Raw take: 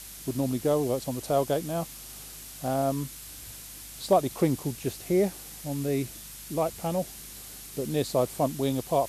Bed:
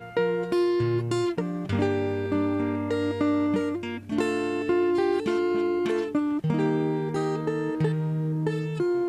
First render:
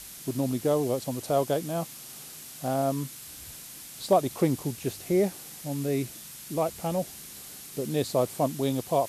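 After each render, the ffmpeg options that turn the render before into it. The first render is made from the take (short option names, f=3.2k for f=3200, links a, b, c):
-af "bandreject=f=50:t=h:w=4,bandreject=f=100:t=h:w=4"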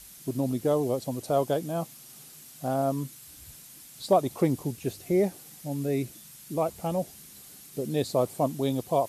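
-af "afftdn=nr=7:nf=-44"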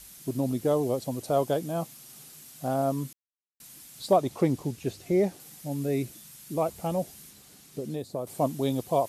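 -filter_complex "[0:a]asettb=1/sr,asplit=3[a][b][c];[a]atrim=end=4.164[d];[b]atrim=start=4.16:end=5.4,asetpts=PTS-STARTPTS,afade=t=in:d=0.004:c=qsin,afade=t=out:st=1.236:d=0.004:c=qsin,acrossover=split=7700[e][f];[f]acompressor=threshold=-54dB:ratio=4:attack=1:release=60[g];[e][g]amix=inputs=2:normalize=0[h];[c]atrim=start=5.396[i];[d][h]acrossfade=d=0.004:c1=hsin:c2=qsin[j];[j][i]acrossfade=d=0.004:c1=qsin:c2=hsin,asettb=1/sr,asplit=3[k][l][m];[k]atrim=end=7.304[n];[l]atrim=start=7.3:end=8.27,asetpts=PTS-STARTPTS,afade=t=in:d=0.004:c=qsin,afade=t=out:st=0.966:d=0.004:c=qsin,acrossover=split=1100|7800[o][p][q];[o]acompressor=threshold=-31dB:ratio=4[r];[p]acompressor=threshold=-54dB:ratio=4[s];[q]acompressor=threshold=-58dB:ratio=4[t];[r][s][t]amix=inputs=3:normalize=0[u];[m]atrim=start=8.266[v];[n][u]acrossfade=d=0.004:c1=hsin:c2=qsin[w];[w][v]acrossfade=d=0.004:c1=qsin:c2=hsin,asplit=3[x][y][z];[x]atrim=end=3.13,asetpts=PTS-STARTPTS,afade=t=out:st=3.126:d=0.004:c=hsin[aa];[y]atrim=start=3.13:end=3.6,asetpts=PTS-STARTPTS,volume=0[ab];[z]atrim=start=3.6,asetpts=PTS-STARTPTS,afade=t=in:d=0.004:c=hsin[ac];[aa][ab][ac]concat=n=3:v=0:a=1"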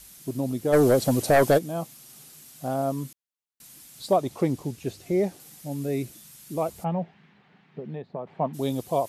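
-filter_complex "[0:a]asplit=3[a][b][c];[a]afade=t=out:st=0.72:d=0.02[d];[b]aeval=exprs='0.237*sin(PI/2*2.24*val(0)/0.237)':c=same,afade=t=in:st=0.72:d=0.02,afade=t=out:st=1.57:d=0.02[e];[c]afade=t=in:st=1.57:d=0.02[f];[d][e][f]amix=inputs=3:normalize=0,asplit=3[g][h][i];[g]afade=t=out:st=6.83:d=0.02[j];[h]highpass=160,equalizer=f=170:t=q:w=4:g=8,equalizer=f=300:t=q:w=4:g=-8,equalizer=f=530:t=q:w=4:g=-4,equalizer=f=870:t=q:w=4:g=5,equalizer=f=1.8k:t=q:w=4:g=4,lowpass=f=2.7k:w=0.5412,lowpass=f=2.7k:w=1.3066,afade=t=in:st=6.83:d=0.02,afade=t=out:st=8.53:d=0.02[k];[i]afade=t=in:st=8.53:d=0.02[l];[j][k][l]amix=inputs=3:normalize=0"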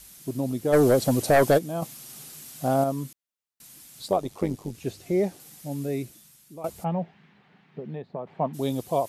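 -filter_complex "[0:a]asettb=1/sr,asplit=3[a][b][c];[a]atrim=end=1.824[d];[b]atrim=start=1.82:end=2.84,asetpts=PTS-STARTPTS,afade=t=in:d=0.004:c=qsin,afade=t=out:st=1.016:d=0.004:c=qsin,acontrast=28[e];[c]atrim=start=2.836[f];[d][e]acrossfade=d=0.004:c1=hsin:c2=qsin[g];[g][f]acrossfade=d=0.004:c1=qsin:c2=hsin,asettb=1/sr,asplit=3[h][i][j];[h]atrim=end=4.084[k];[i]atrim=start=4.08:end=4.75,asetpts=PTS-STARTPTS,afade=t=in:d=0.004:c=qsin,afade=t=out:st=0.666:d=0.004:c=qsin,tremolo=f=98:d=0.667[l];[j]atrim=start=4.746[m];[k][l]acrossfade=d=0.004:c1=hsin:c2=qsin[n];[n][m]acrossfade=d=0.004:c1=qsin:c2=hsin,asplit=2[o][p];[o]atrim=end=6.64,asetpts=PTS-STARTPTS,afade=t=out:st=5.78:d=0.86:silence=0.177828[q];[p]atrim=start=6.64,asetpts=PTS-STARTPTS,afade=t=in:d=0.004:c=hsin:silence=0.177828[r];[q][r]concat=n=2:v=0:a=1"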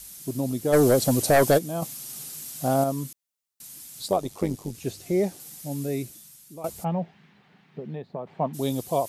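-af "bass=f=250:g=1,treble=f=4k:g=6"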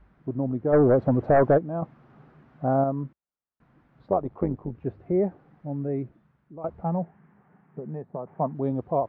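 -af "lowpass=f=1.5k:w=0.5412,lowpass=f=1.5k:w=1.3066,equalizer=f=64:w=1.5:g=4.5"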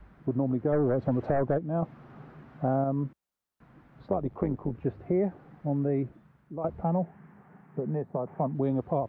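-filter_complex "[0:a]acrossover=split=270|790|1800[a][b][c][d];[a]acompressor=threshold=-34dB:ratio=4[e];[b]acompressor=threshold=-33dB:ratio=4[f];[c]acompressor=threshold=-46dB:ratio=4[g];[d]acompressor=threshold=-54dB:ratio=4[h];[e][f][g][h]amix=inputs=4:normalize=0,asplit=2[i][j];[j]alimiter=level_in=0.5dB:limit=-24dB:level=0:latency=1,volume=-0.5dB,volume=-2.5dB[k];[i][k]amix=inputs=2:normalize=0"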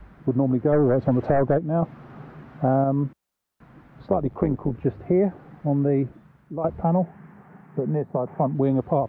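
-af "volume=6.5dB"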